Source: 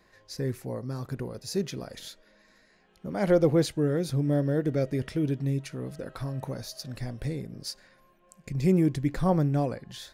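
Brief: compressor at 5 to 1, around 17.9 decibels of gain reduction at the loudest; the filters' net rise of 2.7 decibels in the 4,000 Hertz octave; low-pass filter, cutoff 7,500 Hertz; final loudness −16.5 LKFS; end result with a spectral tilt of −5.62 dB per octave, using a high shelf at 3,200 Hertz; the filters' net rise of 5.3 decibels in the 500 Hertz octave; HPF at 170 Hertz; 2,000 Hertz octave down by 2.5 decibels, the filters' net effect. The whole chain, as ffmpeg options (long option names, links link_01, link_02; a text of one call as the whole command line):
ffmpeg -i in.wav -af "highpass=170,lowpass=7500,equalizer=frequency=500:width_type=o:gain=6.5,equalizer=frequency=2000:width_type=o:gain=-4,highshelf=frequency=3200:gain=-4.5,equalizer=frequency=4000:width_type=o:gain=8,acompressor=threshold=-33dB:ratio=5,volume=21dB" out.wav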